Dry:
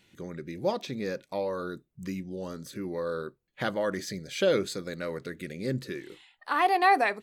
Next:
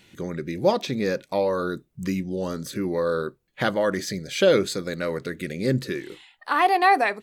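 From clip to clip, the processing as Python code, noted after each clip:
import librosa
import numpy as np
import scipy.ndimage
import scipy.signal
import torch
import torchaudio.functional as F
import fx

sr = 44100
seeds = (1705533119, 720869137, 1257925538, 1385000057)

y = fx.rider(x, sr, range_db=4, speed_s=2.0)
y = F.gain(torch.from_numpy(y), 5.0).numpy()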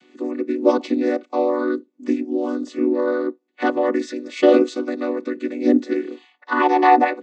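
y = fx.chord_vocoder(x, sr, chord='minor triad', root=59)
y = F.gain(torch.from_numpy(y), 5.5).numpy()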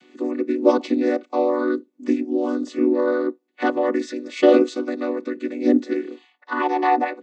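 y = fx.rider(x, sr, range_db=5, speed_s=2.0)
y = F.gain(torch.from_numpy(y), -2.0).numpy()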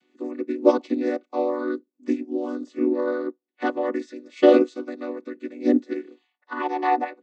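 y = fx.upward_expand(x, sr, threshold_db=-39.0, expansion=1.5)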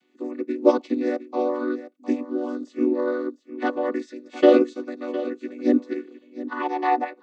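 y = x + 10.0 ** (-14.0 / 20.0) * np.pad(x, (int(709 * sr / 1000.0), 0))[:len(x)]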